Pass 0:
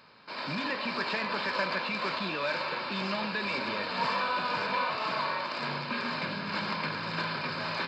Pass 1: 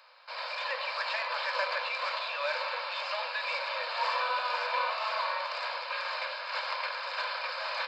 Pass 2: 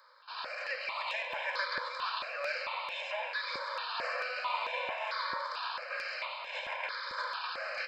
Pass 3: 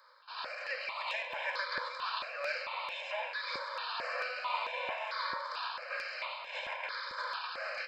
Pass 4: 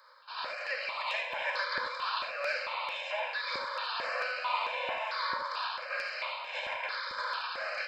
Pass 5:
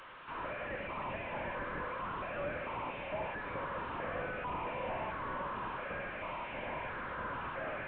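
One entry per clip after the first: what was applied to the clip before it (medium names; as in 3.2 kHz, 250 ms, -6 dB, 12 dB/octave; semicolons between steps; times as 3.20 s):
Chebyshev high-pass 490 Hz, order 10
stepped phaser 4.5 Hz 730–4600 Hz
tremolo triangle 2.9 Hz, depth 30%
gated-style reverb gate 100 ms rising, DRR 7.5 dB; trim +2.5 dB
one-bit delta coder 16 kbps, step -47 dBFS; trim +2 dB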